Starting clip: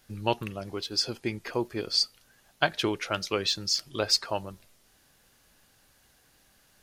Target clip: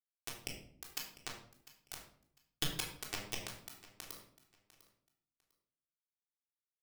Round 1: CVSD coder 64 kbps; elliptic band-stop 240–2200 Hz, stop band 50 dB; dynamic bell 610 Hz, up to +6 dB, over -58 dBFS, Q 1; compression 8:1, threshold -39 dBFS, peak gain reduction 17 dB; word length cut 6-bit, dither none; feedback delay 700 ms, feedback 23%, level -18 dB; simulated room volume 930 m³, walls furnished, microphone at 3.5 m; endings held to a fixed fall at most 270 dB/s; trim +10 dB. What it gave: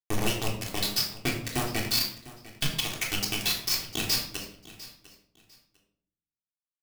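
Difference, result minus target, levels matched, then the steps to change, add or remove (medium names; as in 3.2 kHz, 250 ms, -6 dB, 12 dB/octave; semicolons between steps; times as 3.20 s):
compression: peak gain reduction -5.5 dB
change: compression 8:1, threshold -45.5 dBFS, peak gain reduction 22.5 dB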